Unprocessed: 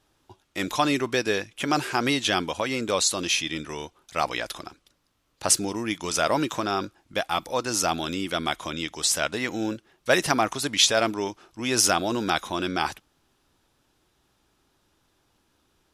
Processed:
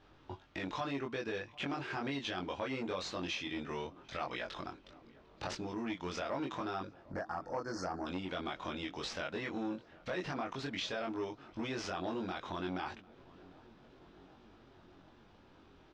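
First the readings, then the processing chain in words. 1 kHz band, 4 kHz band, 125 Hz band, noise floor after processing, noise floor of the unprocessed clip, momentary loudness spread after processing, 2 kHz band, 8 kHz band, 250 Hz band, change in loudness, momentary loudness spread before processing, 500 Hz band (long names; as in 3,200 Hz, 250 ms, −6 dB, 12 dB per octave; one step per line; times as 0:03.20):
−13.5 dB, −17.0 dB, −10.0 dB, −62 dBFS, −69 dBFS, 15 LU, −14.0 dB, −28.0 dB, −11.0 dB, −14.5 dB, 11 LU, −12.5 dB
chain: running median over 5 samples
high-shelf EQ 11,000 Hz −12 dB
brickwall limiter −14 dBFS, peak gain reduction 9 dB
downward compressor 4 to 1, threshold −44 dBFS, peak gain reduction 19 dB
time-frequency box erased 0:07.10–0:08.06, 1,900–4,200 Hz
high-frequency loss of the air 120 metres
double-tracking delay 22 ms −2 dB
feedback echo with a low-pass in the loop 749 ms, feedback 78%, low-pass 1,500 Hz, level −23 dB
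saturating transformer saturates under 870 Hz
level +5 dB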